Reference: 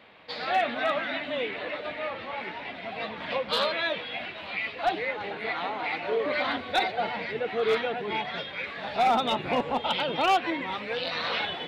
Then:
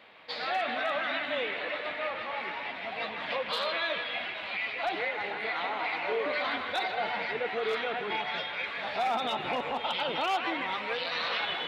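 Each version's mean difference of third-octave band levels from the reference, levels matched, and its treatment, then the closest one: 3.0 dB: low shelf 300 Hz -9 dB; limiter -22.5 dBFS, peak gain reduction 7 dB; band-limited delay 0.158 s, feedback 56%, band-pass 1600 Hz, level -5.5 dB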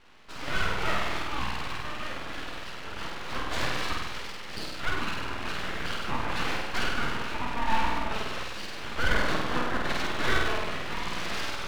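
10.0 dB: air absorption 340 m; flutter echo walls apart 8.5 m, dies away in 1.3 s; full-wave rectifier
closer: first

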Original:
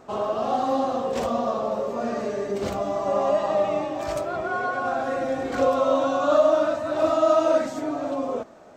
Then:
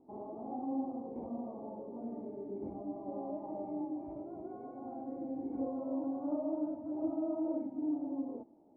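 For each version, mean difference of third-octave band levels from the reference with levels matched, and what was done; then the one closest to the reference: 10.0 dB: vocal tract filter u; gain -3.5 dB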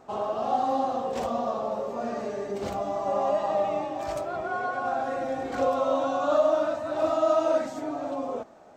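1.0 dB: bell 800 Hz +5.5 dB 0.37 oct; gain -5 dB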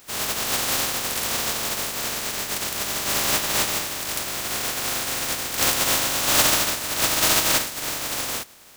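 14.5 dB: spectral contrast lowered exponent 0.11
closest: second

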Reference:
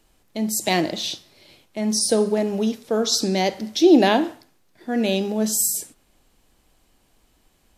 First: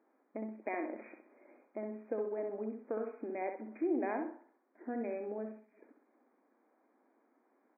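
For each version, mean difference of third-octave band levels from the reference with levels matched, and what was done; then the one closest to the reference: 12.5 dB: Wiener smoothing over 15 samples; compressor 2.5:1, threshold -35 dBFS, peak gain reduction 17 dB; brick-wall FIR band-pass 220–2500 Hz; on a send: feedback echo 64 ms, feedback 29%, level -6.5 dB; on the sum: gain -4.5 dB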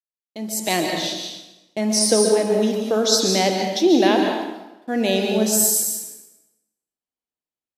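6.5 dB: gate -45 dBFS, range -44 dB; HPF 210 Hz 6 dB/oct; AGC gain up to 15 dB; plate-style reverb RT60 0.99 s, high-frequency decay 0.85×, pre-delay 0.115 s, DRR 3 dB; gain -5.5 dB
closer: second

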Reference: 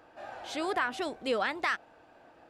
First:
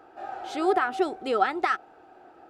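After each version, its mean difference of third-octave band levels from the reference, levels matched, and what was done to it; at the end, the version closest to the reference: 5.0 dB: small resonant body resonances 380/760/1300 Hz, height 14 dB, ringing for 35 ms; gain -1.5 dB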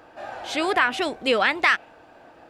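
1.5 dB: dynamic EQ 2500 Hz, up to +7 dB, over -46 dBFS, Q 1.4; gain +8 dB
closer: second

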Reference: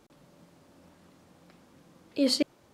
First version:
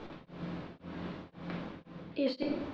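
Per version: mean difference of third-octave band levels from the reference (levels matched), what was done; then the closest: 12.0 dB: LPF 3800 Hz 24 dB/oct; reverse; compressor 5:1, threshold -41 dBFS, peak gain reduction 18.5 dB; reverse; shoebox room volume 86 m³, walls mixed, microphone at 0.68 m; beating tremolo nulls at 1.9 Hz; gain +14.5 dB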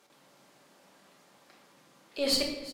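6.5 dB: HPF 990 Hz 6 dB/oct; tube stage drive 23 dB, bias 0.35; echo 0.354 s -18 dB; shoebox room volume 350 m³, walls mixed, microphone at 1.2 m; gain +2.5 dB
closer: second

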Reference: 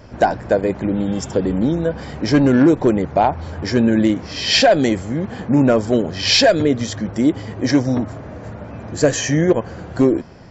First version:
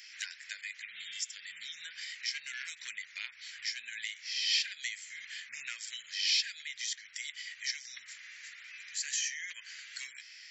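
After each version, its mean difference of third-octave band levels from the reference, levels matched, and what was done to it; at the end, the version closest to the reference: 22.5 dB: elliptic high-pass 2000 Hz, stop band 60 dB; compressor 2:1, threshold -49 dBFS, peak gain reduction 20 dB; gain +5.5 dB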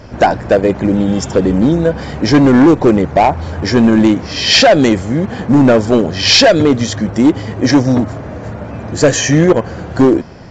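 1.5 dB: hard clip -10.5 dBFS, distortion -14 dB; gain +7 dB; A-law 128 kbps 16000 Hz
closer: second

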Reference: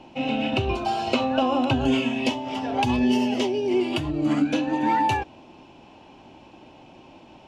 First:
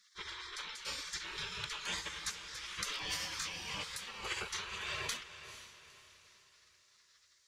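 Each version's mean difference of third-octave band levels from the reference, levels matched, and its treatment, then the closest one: 14.5 dB: spectral gate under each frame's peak -30 dB weak; bell 690 Hz -10.5 dB 0.34 oct; on a send: diffused feedback echo 0.465 s, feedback 41%, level -12 dB; on the sum: gain +3 dB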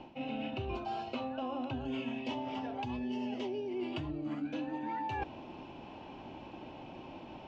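5.5 dB: high shelf 6800 Hz -4.5 dB; reverse; compressor 16:1, threshold -35 dBFS, peak gain reduction 19 dB; reverse; air absorption 120 m; gain +1 dB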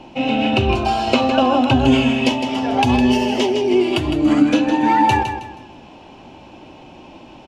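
2.0 dB: low shelf 71 Hz +5 dB; notches 50/100/150 Hz; on a send: feedback echo 0.159 s, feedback 32%, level -8 dB; on the sum: gain +6.5 dB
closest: third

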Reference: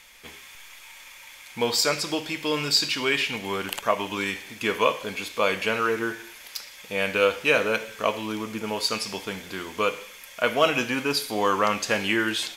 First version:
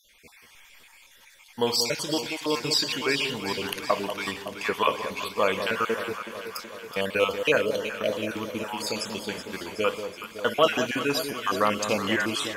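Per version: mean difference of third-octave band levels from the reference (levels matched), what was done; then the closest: 5.0 dB: random spectral dropouts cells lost 38%; gate -39 dBFS, range -6 dB; dynamic EQ 2300 Hz, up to -5 dB, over -42 dBFS, Q 7.6; on a send: echo with dull and thin repeats by turns 0.187 s, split 1000 Hz, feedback 80%, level -8 dB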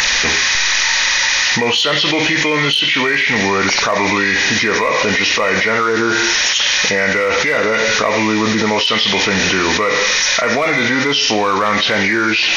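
10.5 dB: nonlinear frequency compression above 1300 Hz 1.5:1; in parallel at -4.5 dB: overloaded stage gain 17.5 dB; on the sum: high shelf 2000 Hz +8.5 dB; fast leveller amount 100%; gain -5.5 dB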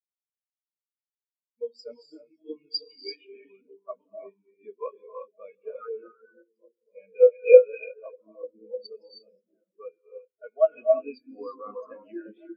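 25.5 dB: high shelf 8400 Hz +8 dB; delay with a stepping band-pass 0.599 s, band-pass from 280 Hz, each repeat 0.7 oct, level -3.5 dB; non-linear reverb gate 0.38 s rising, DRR 0 dB; spectral expander 4:1; gain +2.5 dB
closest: first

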